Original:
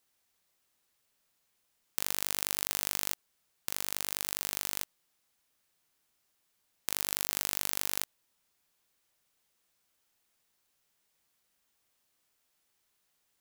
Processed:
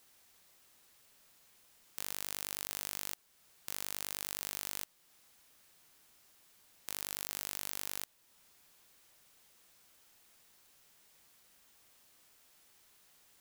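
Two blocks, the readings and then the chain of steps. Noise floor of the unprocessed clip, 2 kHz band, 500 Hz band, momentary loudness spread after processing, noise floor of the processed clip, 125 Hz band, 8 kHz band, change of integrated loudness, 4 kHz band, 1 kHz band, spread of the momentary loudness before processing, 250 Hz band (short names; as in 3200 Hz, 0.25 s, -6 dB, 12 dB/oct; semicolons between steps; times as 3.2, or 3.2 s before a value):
-77 dBFS, -6.5 dB, -6.5 dB, 10 LU, -68 dBFS, -6.5 dB, -6.5 dB, -7.0 dB, -6.5 dB, -6.5 dB, 10 LU, -6.5 dB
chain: in parallel at 0 dB: compressor, threshold -47 dBFS, peak gain reduction 20.5 dB; on the sum: hard clip -17 dBFS, distortion -9 dB; gain +5 dB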